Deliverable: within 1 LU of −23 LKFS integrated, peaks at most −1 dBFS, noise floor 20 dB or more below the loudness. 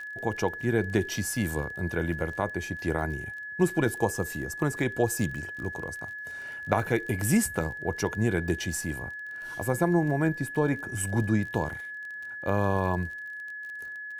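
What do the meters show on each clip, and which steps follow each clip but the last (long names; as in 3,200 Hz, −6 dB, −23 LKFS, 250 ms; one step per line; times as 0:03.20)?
crackle rate 28 per second; interfering tone 1,700 Hz; level of the tone −36 dBFS; integrated loudness −29.5 LKFS; sample peak −5.5 dBFS; target loudness −23.0 LKFS
→ click removal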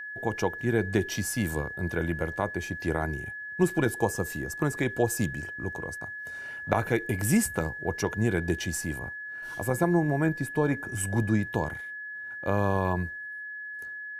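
crackle rate 0.14 per second; interfering tone 1,700 Hz; level of the tone −36 dBFS
→ notch filter 1,700 Hz, Q 30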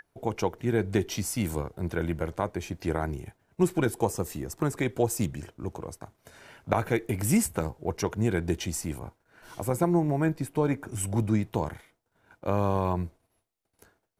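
interfering tone none found; integrated loudness −29.5 LKFS; sample peak −5.5 dBFS; target loudness −23.0 LKFS
→ level +6.5 dB
brickwall limiter −1 dBFS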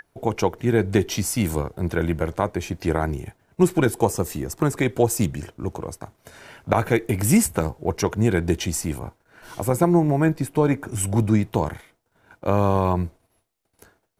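integrated loudness −23.0 LKFS; sample peak −1.0 dBFS; background noise floor −70 dBFS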